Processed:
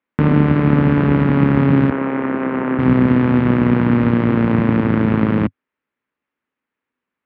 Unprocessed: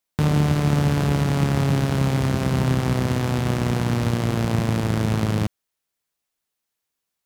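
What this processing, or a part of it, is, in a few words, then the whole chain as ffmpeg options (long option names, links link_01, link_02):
bass cabinet: -filter_complex "[0:a]asettb=1/sr,asplit=3[link_01][link_02][link_03];[link_01]atrim=end=1.904[link_04];[link_02]atrim=start=1.9:end=2.79,asetpts=PTS-STARTPTS,afade=type=in:duration=0.004:curve=qsin,afade=type=out:start_time=0.886:duration=0.004:curve=qsin,acrossover=split=290 2800:gain=0.0891 1 0.0891[link_05][link_06][link_07];[link_05][link_06][link_07]amix=inputs=3:normalize=0[link_08];[link_03]atrim=start=2.786[link_09];[link_04][link_08]acrossfade=duration=0.004:curve1=hsin:curve2=qsin[link_10];[link_10][link_09]acrossfade=duration=0.004:curve1=qsin:curve2=hsin,highpass=79,equalizer=frequency=100:width_type=q:width=4:gain=-9,equalizer=frequency=150:width_type=q:width=4:gain=-3,equalizer=frequency=260:width_type=q:width=4:gain=8,equalizer=frequency=710:width_type=q:width=4:gain=-8,lowpass=frequency=2300:width=0.5412,lowpass=frequency=2300:width=1.3066,volume=7.5dB"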